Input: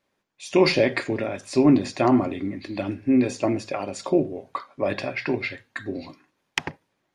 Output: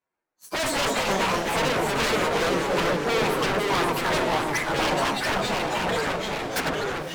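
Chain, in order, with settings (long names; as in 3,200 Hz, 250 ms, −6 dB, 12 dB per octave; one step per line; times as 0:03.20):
phase-vocoder pitch shift without resampling +9.5 semitones
high shelf with overshoot 2,600 Hz −7 dB, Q 3
notch filter 1,900 Hz, Q 7.1
in parallel at −0.5 dB: downward compressor, threshold −30 dBFS, peak gain reduction 15.5 dB
on the sum: leveller curve on the samples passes 2
automatic gain control
wave folding −12.5 dBFS
delay with pitch and tempo change per echo 124 ms, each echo −2 semitones, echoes 3
on a send: feedback delay with all-pass diffusion 570 ms, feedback 46%, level −12.5 dB
on the sum: level −8 dB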